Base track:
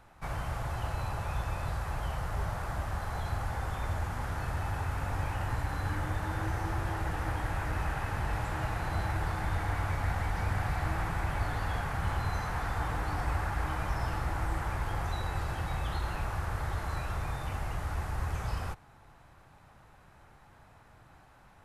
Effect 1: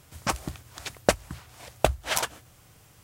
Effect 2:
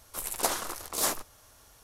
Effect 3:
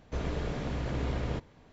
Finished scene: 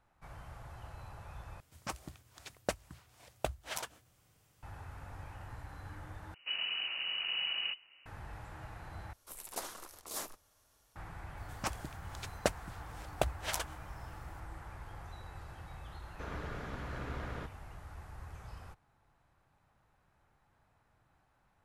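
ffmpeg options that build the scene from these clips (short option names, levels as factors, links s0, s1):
-filter_complex "[1:a]asplit=2[s0][s1];[3:a]asplit=2[s2][s3];[0:a]volume=0.188[s4];[s2]lowpass=f=2600:t=q:w=0.5098,lowpass=f=2600:t=q:w=0.6013,lowpass=f=2600:t=q:w=0.9,lowpass=f=2600:t=q:w=2.563,afreqshift=-3000[s5];[s3]equalizer=f=1400:t=o:w=1.1:g=11.5[s6];[s4]asplit=4[s7][s8][s9][s10];[s7]atrim=end=1.604[s11];[s0]atrim=end=3.03,asetpts=PTS-STARTPTS,volume=0.211[s12];[s8]atrim=start=4.626:end=6.344[s13];[s5]atrim=end=1.72,asetpts=PTS-STARTPTS,volume=0.596[s14];[s9]atrim=start=8.056:end=9.134[s15];[2:a]atrim=end=1.83,asetpts=PTS-STARTPTS,volume=0.224[s16];[s10]atrim=start=10.956[s17];[s1]atrim=end=3.03,asetpts=PTS-STARTPTS,volume=0.316,afade=t=in:d=0.004:c=hsin,afade=t=out:st=3.026:d=0.004:c=hsin,adelay=11370[s18];[s6]atrim=end=1.72,asetpts=PTS-STARTPTS,volume=0.299,afade=t=in:d=0.004:c=hsin,afade=t=out:st=1.716:d=0.004:c=hsin,adelay=16070[s19];[s11][s12]acrossfade=d=0.004:c1=hsin:c2=hsin[s20];[s20][s13]acrossfade=d=0.004:c1=hsin:c2=hsin[s21];[s21][s14]acrossfade=d=0.004:c1=hsin:c2=hsin[s22];[s22][s15]acrossfade=d=0.004:c1=hsin:c2=hsin[s23];[s23][s16]acrossfade=d=0.004:c1=hsin:c2=hsin[s24];[s24][s17]acrossfade=d=0.004:c1=hsin:c2=hsin[s25];[s25][s18][s19]amix=inputs=3:normalize=0"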